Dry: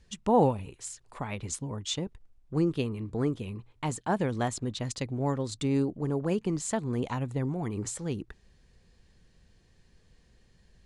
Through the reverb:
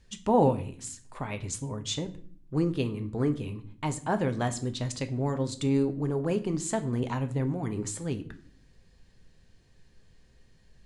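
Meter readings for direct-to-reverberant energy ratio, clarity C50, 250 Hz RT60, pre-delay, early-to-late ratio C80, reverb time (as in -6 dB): 7.5 dB, 15.0 dB, 0.85 s, 3 ms, 19.5 dB, 0.50 s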